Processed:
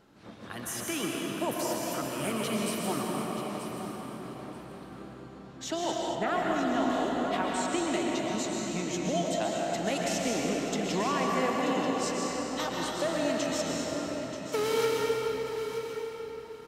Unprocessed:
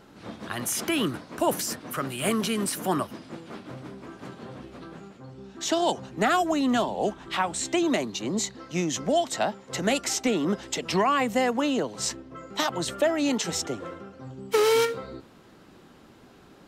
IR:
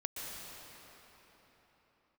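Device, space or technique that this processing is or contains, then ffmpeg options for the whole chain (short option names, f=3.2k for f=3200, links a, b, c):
cathedral: -filter_complex "[1:a]atrim=start_sample=2205[a];[0:a][a]afir=irnorm=-1:irlink=0,asettb=1/sr,asplit=3[b][c][d];[b]atrim=end=0.934[e];[c]atrim=start=0.93:end=1.75,asetpts=PTS-STARTPTS,afade=t=in:d=0.004:c=qsin,afade=t=out:st=0.816:d=0.004:c=qsin,highpass=130[f];[d]atrim=start=1.746[g];[e][f]acrossfade=d=0.004:c1=hsin:c2=qsin[h];[h][g]acrossfade=d=0.004:c1=qsin:c2=hsin,asettb=1/sr,asplit=3[i][j][k];[i]atrim=end=6.154[l];[j]atrim=start=6.15:end=6.9,asetpts=PTS-STARTPTS,afade=t=in:d=0.004:c=qsin,afade=t=out:st=0.746:d=0.004:c=qsin,acrossover=split=3200[m][n];[n]acompressor=threshold=-47dB:ratio=4:attack=1:release=60[o];[m][o]amix=inputs=2:normalize=0[p];[k]atrim=start=6.896[q];[l][p]acrossfade=d=0.004:c1=hsin:c2=qsin[r];[r][q]acrossfade=d=0.004:c1=qsin:c2=hsin,aecho=1:1:933|1866:0.282|0.0507,volume=-5.5dB"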